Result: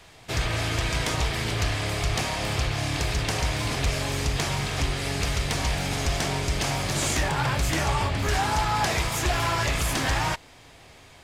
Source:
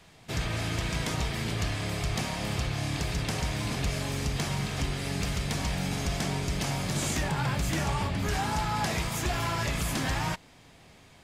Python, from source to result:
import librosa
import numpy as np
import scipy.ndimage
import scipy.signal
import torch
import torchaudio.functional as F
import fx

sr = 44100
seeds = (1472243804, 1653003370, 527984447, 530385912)

y = fx.peak_eq(x, sr, hz=190.0, db=-9.0, octaves=0.91)
y = fx.doppler_dist(y, sr, depth_ms=0.17)
y = y * 10.0 ** (6.0 / 20.0)